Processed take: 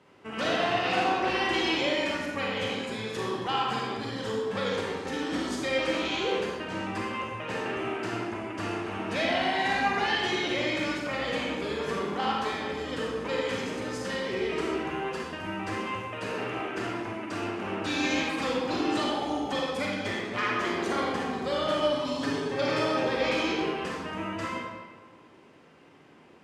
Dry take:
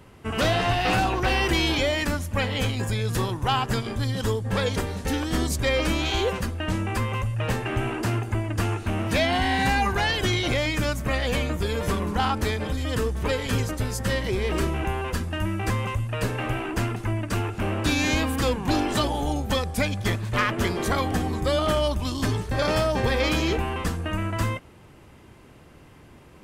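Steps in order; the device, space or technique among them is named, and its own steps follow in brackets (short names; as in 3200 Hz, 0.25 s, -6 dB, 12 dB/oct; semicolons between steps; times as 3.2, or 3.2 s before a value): supermarket ceiling speaker (BPF 230–6100 Hz; reverb RT60 1.5 s, pre-delay 32 ms, DRR -3.5 dB); 21.92–23.04 comb 7.2 ms, depth 60%; gain -7.5 dB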